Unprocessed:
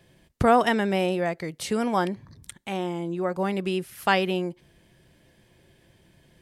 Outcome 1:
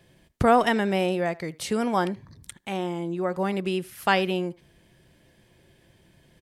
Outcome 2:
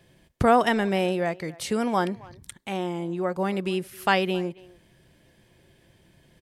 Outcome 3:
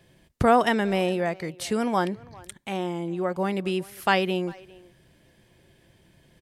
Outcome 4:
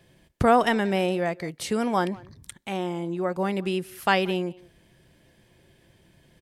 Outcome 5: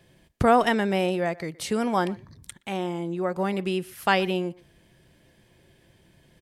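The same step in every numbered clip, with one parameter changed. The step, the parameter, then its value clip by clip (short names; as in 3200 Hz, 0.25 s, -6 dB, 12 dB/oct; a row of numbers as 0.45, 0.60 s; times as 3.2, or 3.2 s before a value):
speakerphone echo, time: 80, 270, 400, 180, 120 ms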